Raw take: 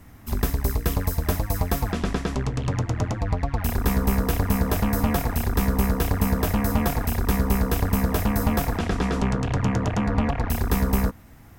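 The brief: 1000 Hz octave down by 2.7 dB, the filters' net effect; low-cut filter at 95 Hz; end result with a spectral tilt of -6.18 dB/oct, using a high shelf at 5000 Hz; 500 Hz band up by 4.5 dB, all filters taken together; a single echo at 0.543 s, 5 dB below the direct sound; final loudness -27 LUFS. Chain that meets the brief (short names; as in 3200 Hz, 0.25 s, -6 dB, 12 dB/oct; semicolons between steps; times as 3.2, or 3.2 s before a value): HPF 95 Hz; bell 500 Hz +7 dB; bell 1000 Hz -6.5 dB; high shelf 5000 Hz -5 dB; echo 0.543 s -5 dB; gain -2.5 dB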